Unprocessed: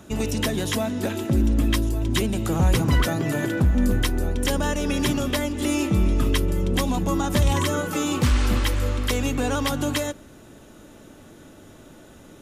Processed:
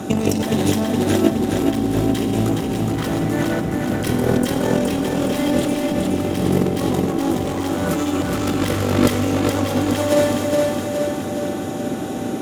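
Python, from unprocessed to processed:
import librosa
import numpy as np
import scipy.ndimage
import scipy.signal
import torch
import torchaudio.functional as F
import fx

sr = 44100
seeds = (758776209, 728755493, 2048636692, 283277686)

p1 = fx.cheby_harmonics(x, sr, harmonics=(4,), levels_db=(-12,), full_scale_db=-10.5)
p2 = scipy.signal.sosfilt(scipy.signal.butter(4, 85.0, 'highpass', fs=sr, output='sos'), p1)
p3 = fx.rev_schroeder(p2, sr, rt60_s=1.3, comb_ms=29, drr_db=7.0)
p4 = np.clip(10.0 ** (21.0 / 20.0) * p3, -1.0, 1.0) / 10.0 ** (21.0 / 20.0)
p5 = fx.over_compress(p4, sr, threshold_db=-30.0, ratio=-0.5)
p6 = p5 + 10.0 ** (-46.0 / 20.0) * np.sin(2.0 * np.pi * 770.0 * np.arange(len(p5)) / sr)
p7 = fx.peak_eq(p6, sr, hz=290.0, db=7.0, octaves=2.3)
p8 = p7 + fx.echo_feedback(p7, sr, ms=418, feedback_pct=58, wet_db=-3.5, dry=0)
y = p8 * 10.0 ** (6.0 / 20.0)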